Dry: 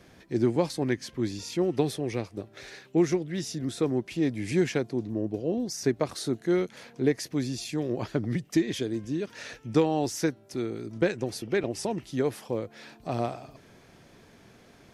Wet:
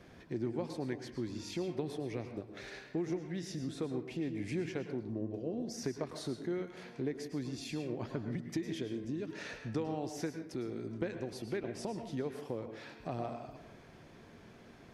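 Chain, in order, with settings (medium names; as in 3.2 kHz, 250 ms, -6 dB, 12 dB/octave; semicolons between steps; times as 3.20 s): treble shelf 4.6 kHz -9 dB; compression 2.5:1, threshold -37 dBFS, peak gain reduction 13 dB; reverberation RT60 0.65 s, pre-delay 100 ms, DRR 7 dB; trim -1.5 dB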